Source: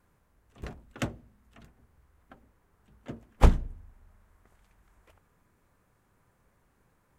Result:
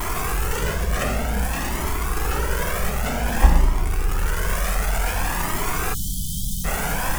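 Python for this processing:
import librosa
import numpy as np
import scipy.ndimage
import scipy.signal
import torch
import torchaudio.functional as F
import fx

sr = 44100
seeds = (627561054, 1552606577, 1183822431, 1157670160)

y = x + 0.5 * 10.0 ** (-19.5 / 20.0) * np.sign(x)
y = fx.graphic_eq_15(y, sr, hz=(100, 250, 4000), db=(-11, -5, -7))
y = fx.rev_gated(y, sr, seeds[0], gate_ms=440, shape='falling', drr_db=-0.5)
y = fx.spec_erase(y, sr, start_s=5.94, length_s=0.71, low_hz=290.0, high_hz=3000.0)
y = fx.comb_cascade(y, sr, direction='rising', hz=0.54)
y = y * 10.0 ** (4.0 / 20.0)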